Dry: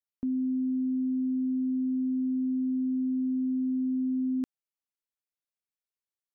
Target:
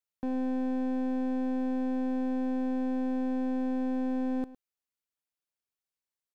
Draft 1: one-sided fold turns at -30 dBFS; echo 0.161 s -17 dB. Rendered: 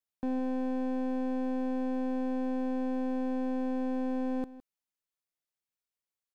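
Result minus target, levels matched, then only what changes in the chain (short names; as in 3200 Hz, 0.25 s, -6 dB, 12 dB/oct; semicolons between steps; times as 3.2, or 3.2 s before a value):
echo 53 ms late
change: echo 0.108 s -17 dB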